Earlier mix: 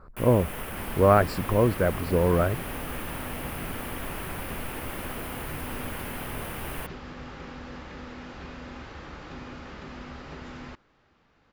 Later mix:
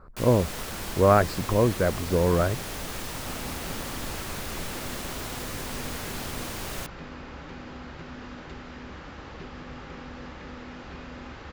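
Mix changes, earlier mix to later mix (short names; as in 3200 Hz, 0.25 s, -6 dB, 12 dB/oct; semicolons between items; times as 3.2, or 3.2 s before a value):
first sound: add band shelf 5400 Hz +15 dB 1.3 oct; second sound: entry +2.50 s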